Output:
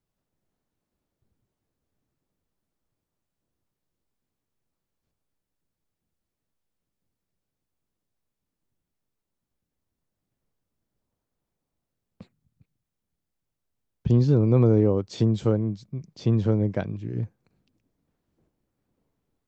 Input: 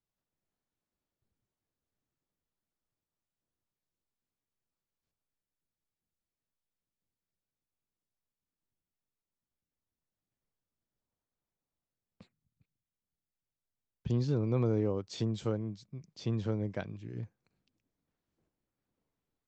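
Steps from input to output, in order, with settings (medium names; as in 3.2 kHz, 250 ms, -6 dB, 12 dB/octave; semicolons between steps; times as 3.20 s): tilt shelf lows +4 dB; trim +7.5 dB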